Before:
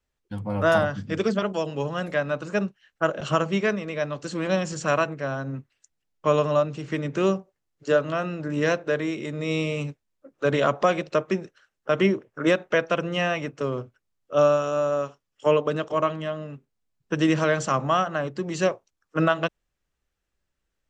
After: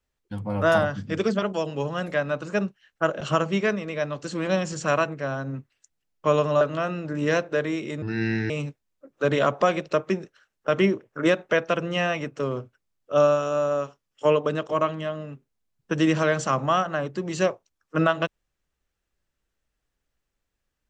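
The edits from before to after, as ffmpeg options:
ffmpeg -i in.wav -filter_complex "[0:a]asplit=4[link_01][link_02][link_03][link_04];[link_01]atrim=end=6.612[link_05];[link_02]atrim=start=7.958:end=9.374[link_06];[link_03]atrim=start=9.37:end=9.71,asetpts=PTS-STARTPTS,asetrate=31311,aresample=44100,atrim=end_sample=21118,asetpts=PTS-STARTPTS[link_07];[link_04]atrim=start=9.706[link_08];[link_05][link_06]acrossfade=duration=0.004:curve1=hsin:curve2=hsin[link_09];[link_09][link_07]acrossfade=duration=0.004:curve1=hsin:curve2=hsin[link_10];[link_10][link_08]acrossfade=duration=0.004:curve1=hsin:curve2=hsin" out.wav

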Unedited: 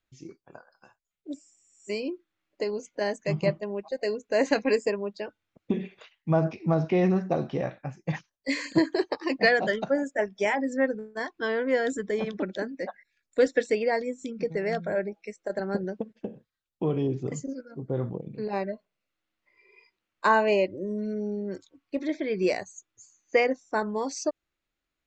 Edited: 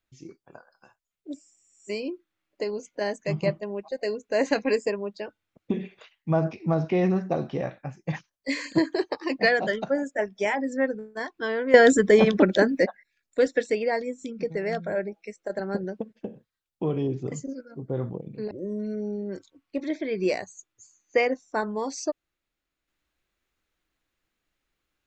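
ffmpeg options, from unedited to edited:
ffmpeg -i in.wav -filter_complex "[0:a]asplit=4[link_01][link_02][link_03][link_04];[link_01]atrim=end=11.742[link_05];[link_02]atrim=start=11.738:end=12.862,asetpts=PTS-STARTPTS,volume=12dB[link_06];[link_03]atrim=start=12.858:end=18.512[link_07];[link_04]atrim=start=20.698[link_08];[link_05][link_06]acrossfade=duration=0.004:curve1=hsin:curve2=hsin[link_09];[link_09][link_07]acrossfade=duration=0.004:curve1=hsin:curve2=hsin[link_10];[link_10][link_08]acrossfade=duration=0.004:curve1=hsin:curve2=hsin" out.wav

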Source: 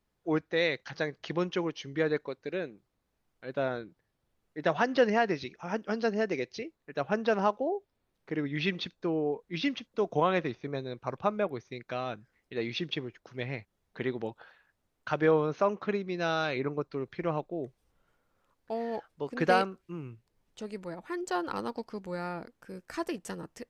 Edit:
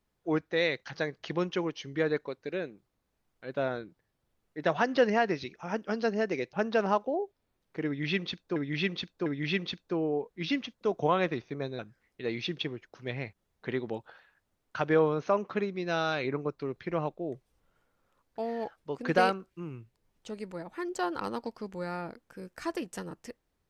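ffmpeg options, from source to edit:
ffmpeg -i in.wav -filter_complex "[0:a]asplit=5[link_01][link_02][link_03][link_04][link_05];[link_01]atrim=end=6.532[link_06];[link_02]atrim=start=7.058:end=9.092[link_07];[link_03]atrim=start=8.388:end=9.092[link_08];[link_04]atrim=start=8.388:end=10.922[link_09];[link_05]atrim=start=12.108[link_10];[link_06][link_07]acrossfade=duration=0.004:curve1=hsin:curve2=hsin[link_11];[link_11][link_08]acrossfade=duration=0.004:curve1=hsin:curve2=hsin[link_12];[link_12][link_09]acrossfade=duration=0.004:curve1=hsin:curve2=hsin[link_13];[link_13][link_10]acrossfade=duration=0.004:curve1=hsin:curve2=hsin" out.wav

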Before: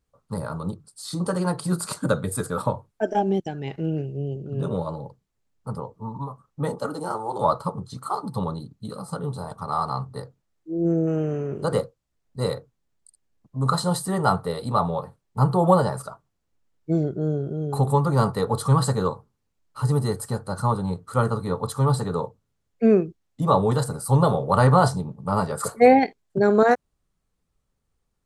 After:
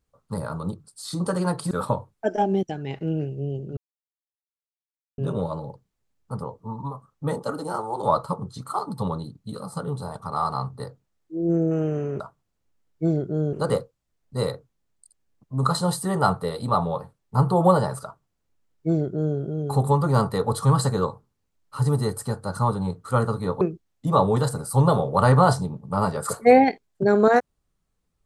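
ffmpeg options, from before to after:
ffmpeg -i in.wav -filter_complex "[0:a]asplit=6[link_01][link_02][link_03][link_04][link_05][link_06];[link_01]atrim=end=1.712[link_07];[link_02]atrim=start=2.478:end=4.54,asetpts=PTS-STARTPTS,afade=type=out:start_time=2.058:duration=0.004:curve=hsin,apad=pad_dur=1.41[link_08];[link_03]atrim=start=4.54:end=11.562,asetpts=PTS-STARTPTS,afade=type=in:duration=0.004:curve=hsin[link_09];[link_04]atrim=start=16.068:end=17.402[link_10];[link_05]atrim=start=11.558:end=21.642[link_11];[link_06]atrim=start=22.958[link_12];[link_08][link_09]concat=n=2:v=0:a=1[link_13];[link_07][link_13]acrossfade=duration=0.004:curve1=hsin:curve2=hsin[link_14];[link_14][link_10]acrossfade=duration=0.004:curve1=hsin:curve2=hsin[link_15];[link_15][link_11]acrossfade=duration=0.004:curve1=hsin:curve2=hsin[link_16];[link_16][link_12]acrossfade=duration=0.004:curve1=hsin:curve2=hsin" out.wav

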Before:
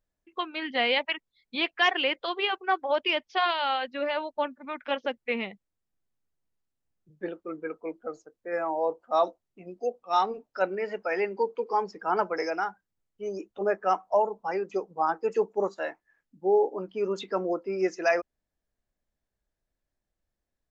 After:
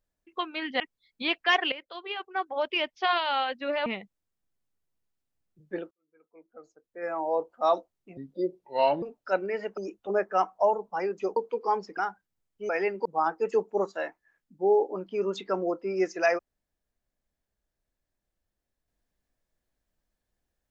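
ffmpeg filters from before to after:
ffmpeg -i in.wav -filter_complex "[0:a]asplit=12[link_01][link_02][link_03][link_04][link_05][link_06][link_07][link_08][link_09][link_10][link_11][link_12];[link_01]atrim=end=0.802[link_13];[link_02]atrim=start=1.128:end=2.05,asetpts=PTS-STARTPTS,afade=type=out:start_time=0.918:duration=0.004:curve=hsin:silence=0.16788[link_14];[link_03]atrim=start=2.05:end=4.192,asetpts=PTS-STARTPTS,afade=type=in:duration=1.35:silence=0.16788[link_15];[link_04]atrim=start=5.358:end=7.41,asetpts=PTS-STARTPTS,afade=type=out:start_time=2.048:duration=0.004:curve=hsin[link_16];[link_05]atrim=start=7.41:end=9.674,asetpts=PTS-STARTPTS,afade=type=in:duration=1.4:curve=qua[link_17];[link_06]atrim=start=9.67:end=10.31,asetpts=PTS-STARTPTS,asetrate=33075,aresample=44100[link_18];[link_07]atrim=start=10.306:end=11.062[link_19];[link_08]atrim=start=13.288:end=14.882[link_20];[link_09]atrim=start=11.418:end=12.032[link_21];[link_10]atrim=start=12.568:end=13.292[link_22];[link_11]atrim=start=11.058:end=11.422[link_23];[link_12]atrim=start=14.878[link_24];[link_14][link_15]concat=n=2:v=0:a=1[link_25];[link_13][link_25]acrossfade=duration=0.004:curve1=hsin:curve2=hsin[link_26];[link_16][link_17]concat=n=2:v=0:a=1[link_27];[link_26][link_27]acrossfade=duration=0.004:curve1=hsin:curve2=hsin[link_28];[link_28][link_18]acrossfade=duration=0.004:curve1=hsin:curve2=hsin[link_29];[link_29][link_19]acrossfade=duration=0.004:curve1=hsin:curve2=hsin[link_30];[link_30][link_20]acrossfade=duration=0.004:curve1=hsin:curve2=hsin[link_31];[link_31][link_21]acrossfade=duration=0.004:curve1=hsin:curve2=hsin[link_32];[link_32][link_22]acrossfade=duration=0.004:curve1=hsin:curve2=hsin[link_33];[link_33][link_23]acrossfade=duration=0.004:curve1=hsin:curve2=hsin[link_34];[link_34][link_24]acrossfade=duration=0.004:curve1=hsin:curve2=hsin" out.wav

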